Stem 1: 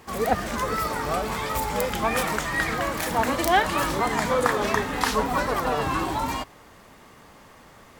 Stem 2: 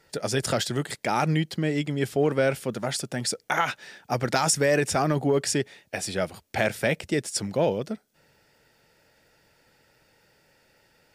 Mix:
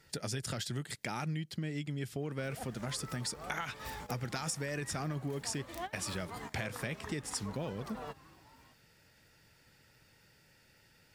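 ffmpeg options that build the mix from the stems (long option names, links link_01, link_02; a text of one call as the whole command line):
ffmpeg -i stem1.wav -i stem2.wav -filter_complex "[0:a]adelay=2300,volume=-17dB[link_01];[1:a]equalizer=frequency=600:width=0.73:gain=-7.5,volume=-1dB,asplit=2[link_02][link_03];[link_03]apad=whole_len=453963[link_04];[link_01][link_04]sidechaingate=range=-19dB:threshold=-55dB:ratio=16:detection=peak[link_05];[link_05][link_02]amix=inputs=2:normalize=0,equalizer=frequency=99:width=0.83:gain=4.5,acompressor=threshold=-36dB:ratio=4" out.wav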